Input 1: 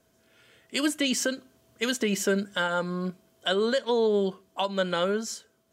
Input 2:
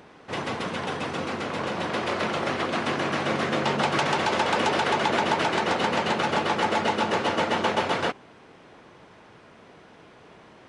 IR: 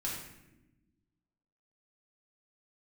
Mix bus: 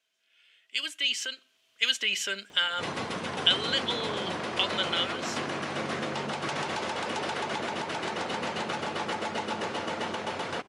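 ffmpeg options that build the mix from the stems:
-filter_complex "[0:a]dynaudnorm=f=560:g=5:m=8.5dB,bandpass=f=2.8k:t=q:w=2.4:csg=0,volume=0dB[a];[1:a]alimiter=limit=-18.5dB:level=0:latency=1:release=177,adelay=2500,volume=-4dB[b];[a][b]amix=inputs=2:normalize=0,highshelf=f=5.1k:g=6.5"

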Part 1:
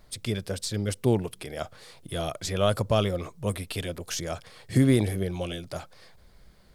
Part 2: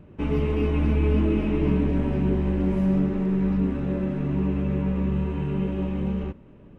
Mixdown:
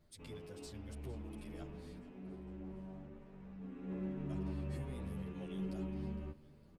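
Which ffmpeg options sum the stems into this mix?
-filter_complex "[0:a]acompressor=threshold=-38dB:ratio=2,volume=-14dB,asplit=3[a][b][c];[a]atrim=end=2.01,asetpts=PTS-STARTPTS,afade=t=out:st=2.006:d=0.004:c=hsin[d];[b]atrim=start=2.01:end=4.29,asetpts=PTS-STARTPTS,volume=0[e];[c]atrim=start=4.29,asetpts=PTS-STARTPTS,afade=t=in:d=0.004:c=hsin[f];[d][e][f]concat=n=3:v=0:a=1,asplit=2[g][h];[h]volume=-18dB[i];[1:a]asoftclip=type=hard:threshold=-19.5dB,volume=-13dB,afade=t=in:st=3.6:d=0.37:silence=0.354813,asplit=2[j][k];[k]volume=-22dB[l];[i][l]amix=inputs=2:normalize=0,aecho=0:1:459|918|1377|1836|2295|2754|3213:1|0.51|0.26|0.133|0.0677|0.0345|0.0176[m];[g][j][m]amix=inputs=3:normalize=0,asplit=2[n][o];[o]adelay=9.8,afreqshift=0.61[p];[n][p]amix=inputs=2:normalize=1"

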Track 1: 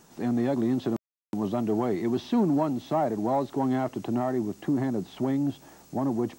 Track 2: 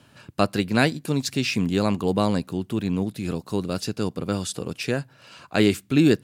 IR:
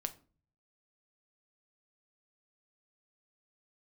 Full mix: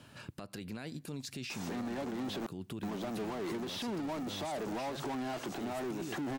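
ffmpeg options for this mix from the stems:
-filter_complex "[0:a]highpass=42,asplit=2[a][b];[b]highpass=f=720:p=1,volume=24dB,asoftclip=type=tanh:threshold=-25dB[c];[a][c]amix=inputs=2:normalize=0,lowpass=f=7k:p=1,volume=-6dB,adelay=1500,volume=-5dB[d];[1:a]acompressor=threshold=-24dB:ratio=6,alimiter=level_in=7dB:limit=-24dB:level=0:latency=1:release=131,volume=-7dB,volume=-1.5dB[e];[d][e]amix=inputs=2:normalize=0,alimiter=level_in=6.5dB:limit=-24dB:level=0:latency=1:release=135,volume=-6.5dB"

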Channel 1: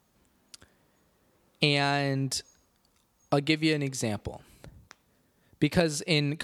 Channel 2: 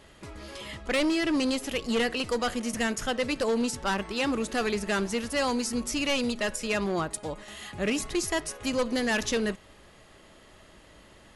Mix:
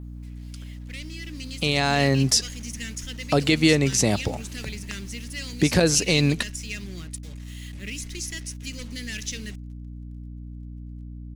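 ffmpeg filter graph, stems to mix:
-filter_complex "[0:a]alimiter=limit=-17dB:level=0:latency=1,volume=0dB[a];[1:a]firequalizer=gain_entry='entry(120,0);entry(810,-25);entry(2000,3)':delay=0.05:min_phase=1,acrusher=bits=6:mix=0:aa=0.5,volume=-15dB[b];[a][b]amix=inputs=2:normalize=0,adynamicequalizer=threshold=0.00178:dfrequency=6000:dqfactor=2.7:tfrequency=6000:tqfactor=2.7:attack=5:release=100:ratio=0.375:range=3.5:mode=boostabove:tftype=bell,dynaudnorm=f=260:g=11:m=9dB,aeval=exprs='val(0)+0.0158*(sin(2*PI*60*n/s)+sin(2*PI*2*60*n/s)/2+sin(2*PI*3*60*n/s)/3+sin(2*PI*4*60*n/s)/4+sin(2*PI*5*60*n/s)/5)':c=same"

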